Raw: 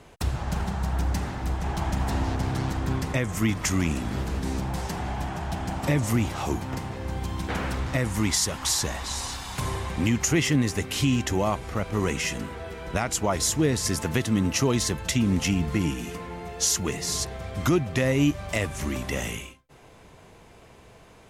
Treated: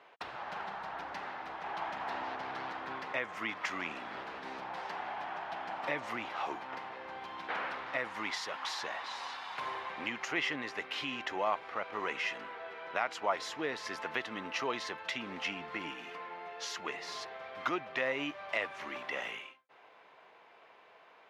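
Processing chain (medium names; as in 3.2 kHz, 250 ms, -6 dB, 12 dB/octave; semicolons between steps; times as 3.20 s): high-pass 790 Hz 12 dB/octave; distance through air 330 m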